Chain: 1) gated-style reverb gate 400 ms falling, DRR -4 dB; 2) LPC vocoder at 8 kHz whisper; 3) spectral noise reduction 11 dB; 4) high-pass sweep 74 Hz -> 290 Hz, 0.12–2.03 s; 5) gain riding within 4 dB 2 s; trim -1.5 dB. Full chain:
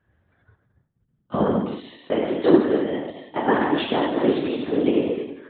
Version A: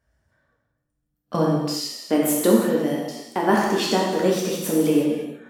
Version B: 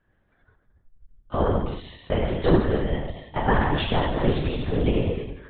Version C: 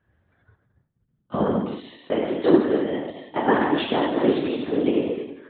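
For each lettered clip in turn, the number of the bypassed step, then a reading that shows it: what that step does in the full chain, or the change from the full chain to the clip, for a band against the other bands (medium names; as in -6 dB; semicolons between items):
2, 4 kHz band +4.0 dB; 4, 125 Hz band +10.0 dB; 5, momentary loudness spread change -1 LU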